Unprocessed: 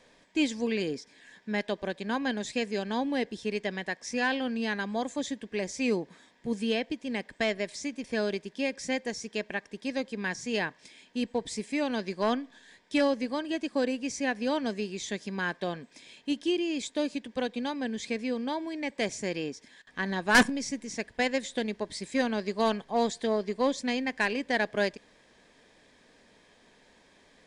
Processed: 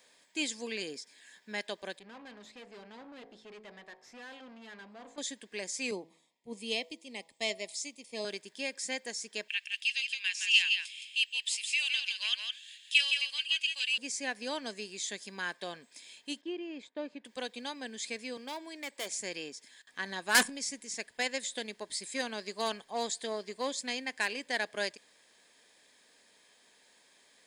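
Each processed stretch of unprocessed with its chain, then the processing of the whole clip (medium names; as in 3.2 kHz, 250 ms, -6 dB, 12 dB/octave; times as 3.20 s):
1.99–5.18 s: de-hum 53.98 Hz, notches 21 + valve stage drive 36 dB, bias 0.45 + tape spacing loss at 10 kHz 27 dB
5.91–8.25 s: Butterworth band-stop 1.5 kHz, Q 1.6 + de-hum 163.9 Hz, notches 7 + three bands expanded up and down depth 70%
9.48–13.98 s: resonant high-pass 2.8 kHz, resonance Q 9.1 + delay 166 ms -5.5 dB
16.41–17.25 s: low-pass 1.6 kHz + gate -56 dBFS, range -9 dB
18.37–19.11 s: high-pass 240 Hz + overload inside the chain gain 27 dB
whole clip: RIAA curve recording; band-stop 5.8 kHz, Q 11; trim -6 dB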